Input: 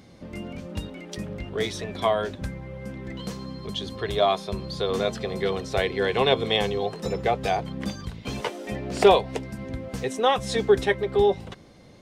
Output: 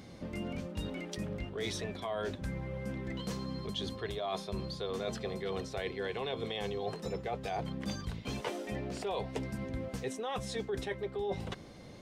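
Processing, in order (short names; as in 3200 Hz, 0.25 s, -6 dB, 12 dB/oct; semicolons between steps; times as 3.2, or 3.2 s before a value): limiter -15.5 dBFS, peak gain reduction 8.5 dB; reverse; compressor 6:1, threshold -34 dBFS, peak gain reduction 14 dB; reverse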